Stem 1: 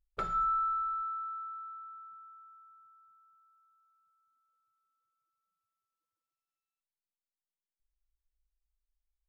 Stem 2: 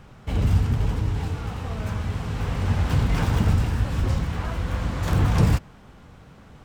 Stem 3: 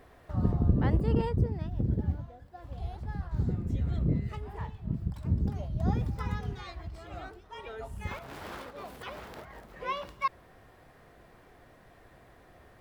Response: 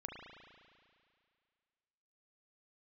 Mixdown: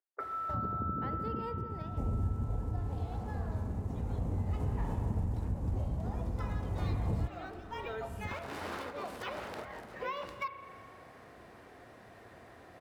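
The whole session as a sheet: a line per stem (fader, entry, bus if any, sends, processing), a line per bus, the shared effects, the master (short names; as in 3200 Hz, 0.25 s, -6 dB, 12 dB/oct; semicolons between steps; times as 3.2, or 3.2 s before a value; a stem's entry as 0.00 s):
-0.5 dB, 0.00 s, no bus, no send, compressor, threshold -35 dBFS, peak gain reduction 7 dB; Chebyshev band-pass 280–2100 Hz, order 5
-1.5 dB, 1.70 s, bus A, no send, median filter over 15 samples; band shelf 2600 Hz -13.5 dB 2.5 oct
+0.5 dB, 0.20 s, bus A, send -3.5 dB, HPF 90 Hz; compressor 6:1, threshold -36 dBFS, peak gain reduction 14.5 dB
bus A: 0.0 dB, compressor 2:1, threshold -38 dBFS, peak gain reduction 13 dB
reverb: on, RT60 2.2 s, pre-delay 35 ms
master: bell 150 Hz -6 dB 0.41 oct; notch 3300 Hz, Q 26; decimation joined by straight lines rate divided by 2×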